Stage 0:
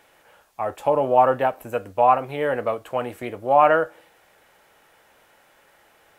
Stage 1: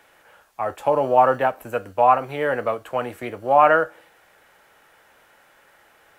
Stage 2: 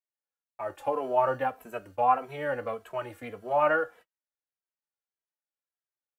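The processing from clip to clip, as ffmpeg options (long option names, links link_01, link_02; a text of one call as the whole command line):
ffmpeg -i in.wav -filter_complex "[0:a]equalizer=frequency=1500:width=1.6:gain=4,acrossover=split=160[link_01][link_02];[link_01]acrusher=samples=30:mix=1:aa=0.000001[link_03];[link_03][link_02]amix=inputs=2:normalize=0" out.wav
ffmpeg -i in.wav -filter_complex "[0:a]agate=range=-41dB:threshold=-41dB:ratio=16:detection=peak,asplit=2[link_01][link_02];[link_02]adelay=2.7,afreqshift=-1.7[link_03];[link_01][link_03]amix=inputs=2:normalize=1,volume=-6dB" out.wav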